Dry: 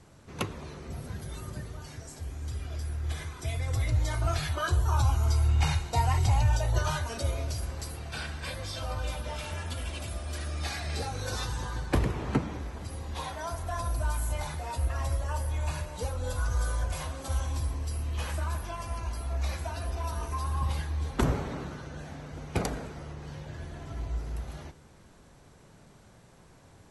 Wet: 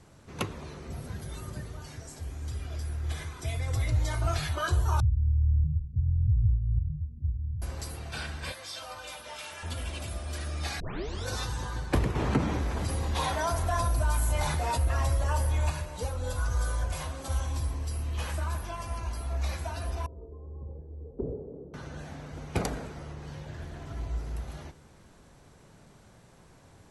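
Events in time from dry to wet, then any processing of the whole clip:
5–7.62 inverse Chebyshev low-pass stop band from 760 Hz, stop band 70 dB
8.52–9.63 HPF 990 Hz 6 dB/oct
10.8 tape start 0.47 s
12.15–15.7 fast leveller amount 50%
20.06–21.74 ladder low-pass 490 Hz, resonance 70%
23.51–23.94 Doppler distortion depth 0.19 ms

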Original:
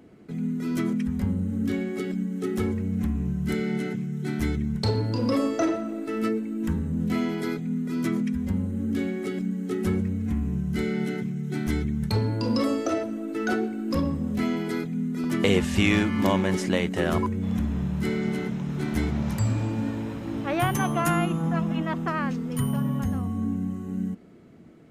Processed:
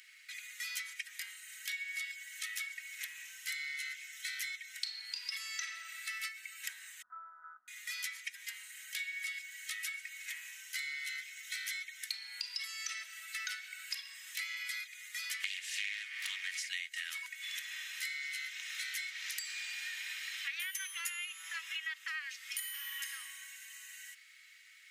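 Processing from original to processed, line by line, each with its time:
7.02–7.68 steep low-pass 1400 Hz 96 dB/oct
15.39–16.7 Doppler distortion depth 0.38 ms
22.52–23.07 reverb throw, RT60 1.3 s, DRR 2.5 dB
whole clip: elliptic high-pass 1900 Hz, stop band 80 dB; comb 3.2 ms, depth 42%; compressor 6:1, threshold -50 dBFS; gain +12 dB

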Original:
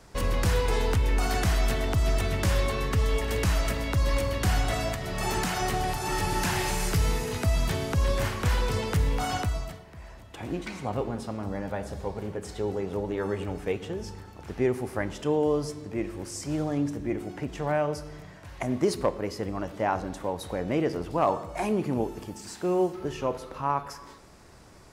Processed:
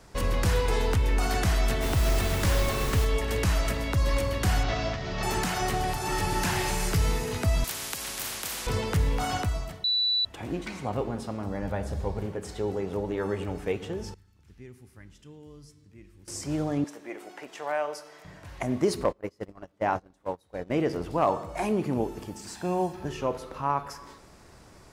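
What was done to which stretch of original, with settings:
1.81–3.04 added noise pink -34 dBFS
4.63–5.23 CVSD 32 kbps
7.64–8.67 spectral compressor 10:1
9.84–10.25 bleep 3960 Hz -22 dBFS
11.62–12.26 low shelf 91 Hz +12 dB
14.14–16.28 passive tone stack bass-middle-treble 6-0-2
16.84–18.25 HPF 590 Hz
19.04–20.79 gate -30 dBFS, range -27 dB
22.56–23.09 comb 1.2 ms, depth 56%

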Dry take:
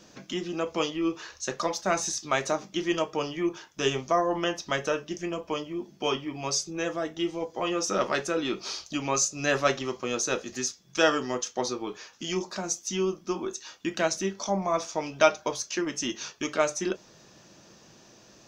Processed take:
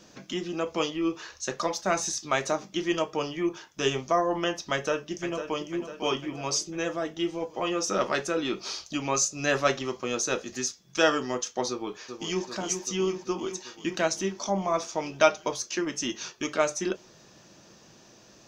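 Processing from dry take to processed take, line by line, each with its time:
4.72–5.7 echo throw 0.5 s, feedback 55%, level -10 dB
11.69–12.47 echo throw 0.39 s, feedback 75%, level -7 dB

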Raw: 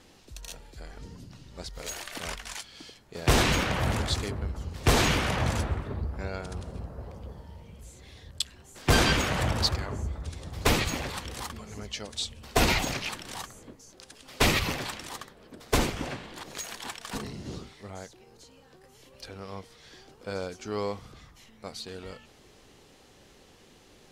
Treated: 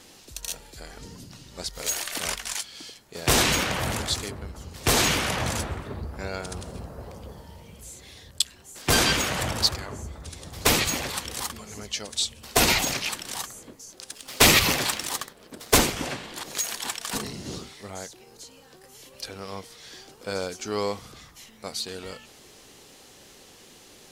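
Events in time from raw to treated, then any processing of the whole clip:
14.1–15.81 sample leveller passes 1
whole clip: low shelf 110 Hz -7.5 dB; vocal rider within 4 dB 2 s; high shelf 4800 Hz +10 dB

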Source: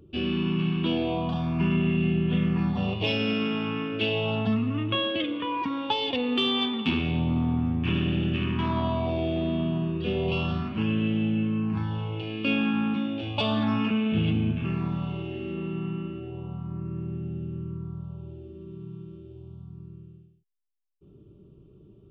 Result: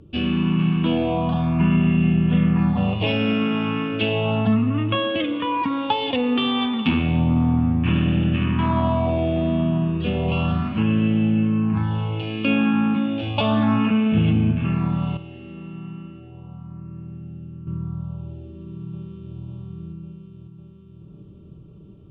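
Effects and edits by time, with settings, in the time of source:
15.17–17.67 gain -9.5 dB
18.38–19.37 echo throw 0.55 s, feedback 75%, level -5.5 dB
whole clip: treble ducked by the level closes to 2700 Hz, closed at -23 dBFS; LPF 4000 Hz 6 dB/oct; bell 380 Hz -10 dB 0.26 oct; gain +7 dB

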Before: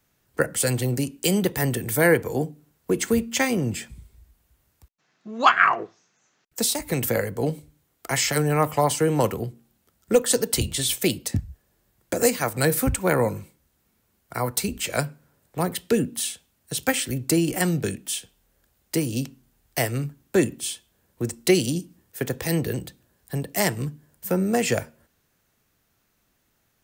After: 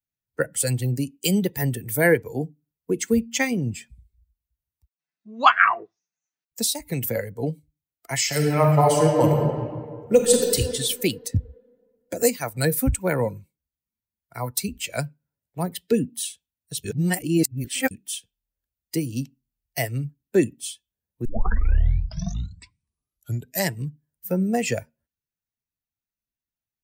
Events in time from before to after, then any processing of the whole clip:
8.24–10.54 reverb throw, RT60 3 s, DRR -1.5 dB
16.84–17.91 reverse
21.25 tape start 2.49 s
whole clip: per-bin expansion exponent 1.5; low shelf 64 Hz +6 dB; gain +2.5 dB

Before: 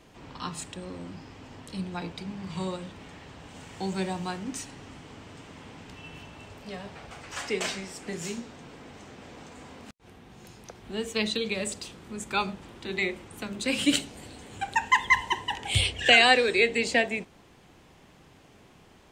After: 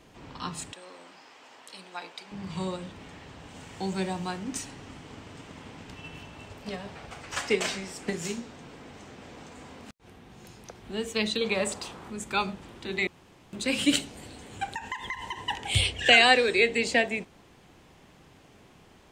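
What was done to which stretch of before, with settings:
0.73–2.32 HPF 640 Hz
4.51–8.36 transient shaper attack +7 dB, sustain +2 dB
11.41–12.1 bell 940 Hz +10.5 dB 1.6 oct
13.07–13.53 room tone
14.73–15.42 compressor 16:1, threshold -30 dBFS

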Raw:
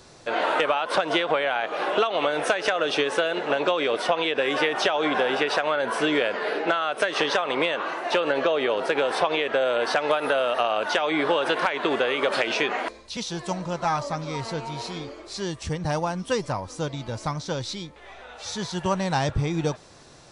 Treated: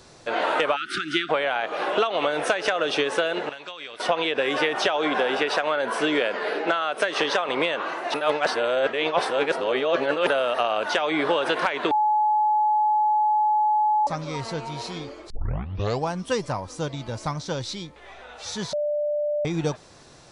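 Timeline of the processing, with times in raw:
0.76–1.29 spectral delete 390–1200 Hz
3.49–4 passive tone stack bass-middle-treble 5-5-5
4.87–7.49 HPF 150 Hz
8.14–10.27 reverse
11.91–14.07 bleep 851 Hz -17.5 dBFS
15.3 tape start 0.80 s
18.73–19.45 bleep 592 Hz -22 dBFS

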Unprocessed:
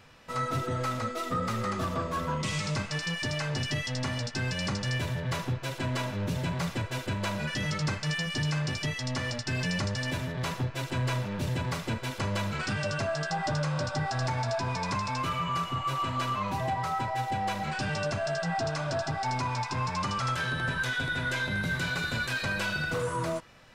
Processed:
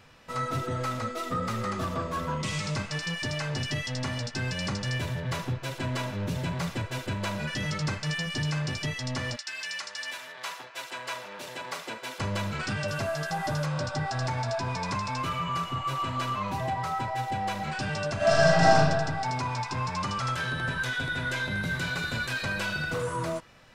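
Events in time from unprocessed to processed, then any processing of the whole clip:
9.35–12.19 HPF 1500 Hz -> 390 Hz
12.88–13.66 delta modulation 64 kbps, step -40.5 dBFS
18.16–18.75 reverb throw, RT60 1.4 s, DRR -11 dB

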